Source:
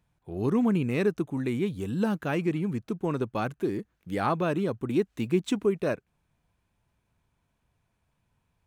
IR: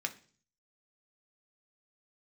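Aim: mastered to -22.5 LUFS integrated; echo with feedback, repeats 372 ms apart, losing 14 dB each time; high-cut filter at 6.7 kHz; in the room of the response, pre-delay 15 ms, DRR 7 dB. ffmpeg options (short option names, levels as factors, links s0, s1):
-filter_complex "[0:a]lowpass=6700,aecho=1:1:372|744:0.2|0.0399,asplit=2[s0][s1];[1:a]atrim=start_sample=2205,adelay=15[s2];[s1][s2]afir=irnorm=-1:irlink=0,volume=0.335[s3];[s0][s3]amix=inputs=2:normalize=0,volume=1.88"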